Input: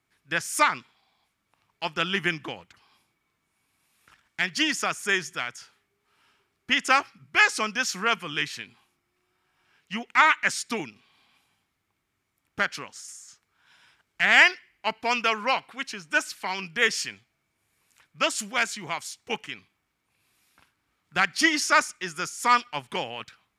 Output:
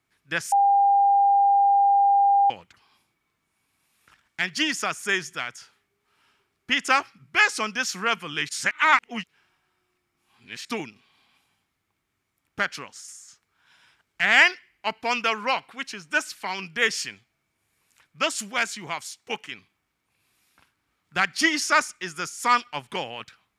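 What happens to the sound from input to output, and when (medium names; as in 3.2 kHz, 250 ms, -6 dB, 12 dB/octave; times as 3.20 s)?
0.52–2.50 s: bleep 800 Hz -15 dBFS
8.49–10.65 s: reverse
19.09–19.52 s: bass shelf 120 Hz -11 dB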